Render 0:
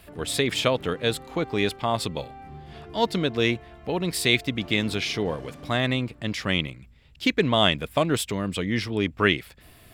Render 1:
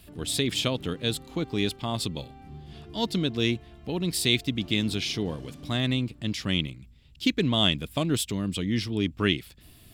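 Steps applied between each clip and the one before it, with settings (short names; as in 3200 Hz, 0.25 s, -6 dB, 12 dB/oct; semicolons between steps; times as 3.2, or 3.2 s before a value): band shelf 1000 Hz -8.5 dB 2.7 oct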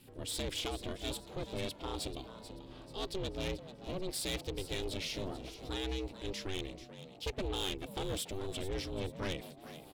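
ring modulator 190 Hz; soft clip -26 dBFS, distortion -9 dB; frequency-shifting echo 0.437 s, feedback 40%, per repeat +140 Hz, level -13 dB; gain -4.5 dB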